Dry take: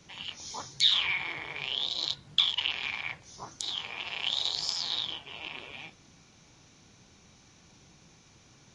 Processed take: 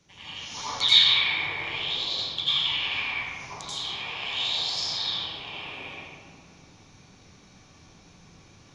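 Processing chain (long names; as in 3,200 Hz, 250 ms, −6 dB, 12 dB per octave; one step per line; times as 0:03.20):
0:00.42–0:00.90: parametric band 2,300 Hz +9 dB 1.9 octaves
convolution reverb RT60 2.2 s, pre-delay 81 ms, DRR −12.5 dB
level −7.5 dB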